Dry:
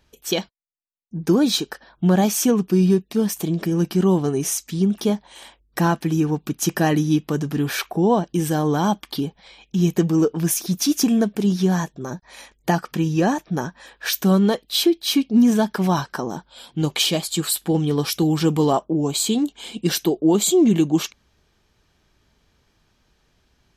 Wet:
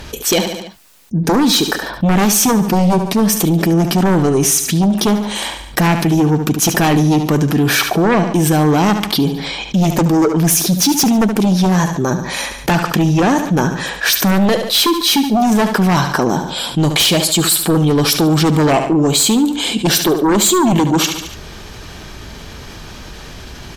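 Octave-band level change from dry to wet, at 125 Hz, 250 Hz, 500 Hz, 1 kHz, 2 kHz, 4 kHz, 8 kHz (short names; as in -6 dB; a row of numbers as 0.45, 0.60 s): +7.5, +5.5, +5.5, +9.5, +11.5, +9.5, +10.0 dB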